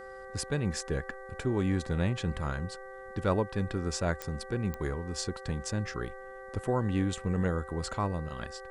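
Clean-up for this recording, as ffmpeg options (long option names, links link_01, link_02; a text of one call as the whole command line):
ffmpeg -i in.wav -af "adeclick=threshold=4,bandreject=frequency=387:width_type=h:width=4,bandreject=frequency=774:width_type=h:width=4,bandreject=frequency=1161:width_type=h:width=4,bandreject=frequency=1548:width_type=h:width=4,bandreject=frequency=1935:width_type=h:width=4,bandreject=frequency=520:width=30,agate=range=-21dB:threshold=-37dB" out.wav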